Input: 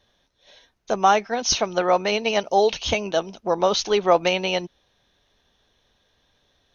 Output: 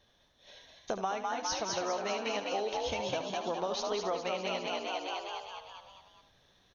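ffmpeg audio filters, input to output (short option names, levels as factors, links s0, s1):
-filter_complex "[0:a]asplit=2[s0][s1];[s1]asplit=8[s2][s3][s4][s5][s6][s7][s8][s9];[s2]adelay=203,afreqshift=57,volume=0.631[s10];[s3]adelay=406,afreqshift=114,volume=0.372[s11];[s4]adelay=609,afreqshift=171,volume=0.219[s12];[s5]adelay=812,afreqshift=228,volume=0.13[s13];[s6]adelay=1015,afreqshift=285,volume=0.0767[s14];[s7]adelay=1218,afreqshift=342,volume=0.0452[s15];[s8]adelay=1421,afreqshift=399,volume=0.0266[s16];[s9]adelay=1624,afreqshift=456,volume=0.0157[s17];[s10][s11][s12][s13][s14][s15][s16][s17]amix=inputs=8:normalize=0[s18];[s0][s18]amix=inputs=2:normalize=0,acompressor=threshold=0.0355:ratio=6,asplit=2[s19][s20];[s20]aecho=0:1:75:0.316[s21];[s19][s21]amix=inputs=2:normalize=0,volume=0.708"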